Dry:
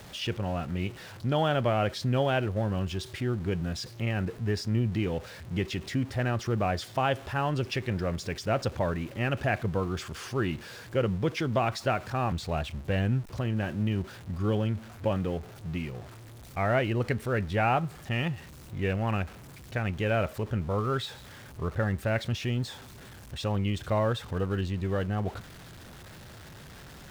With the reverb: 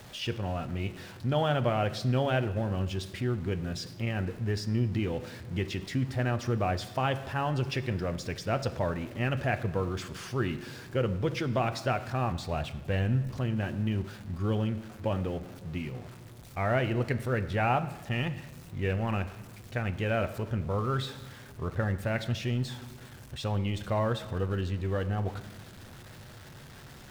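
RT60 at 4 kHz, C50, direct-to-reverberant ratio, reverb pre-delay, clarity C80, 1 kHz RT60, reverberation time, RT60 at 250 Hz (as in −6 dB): 0.95 s, 14.0 dB, 10.0 dB, 8 ms, 15.5 dB, 1.2 s, 1.4 s, 1.9 s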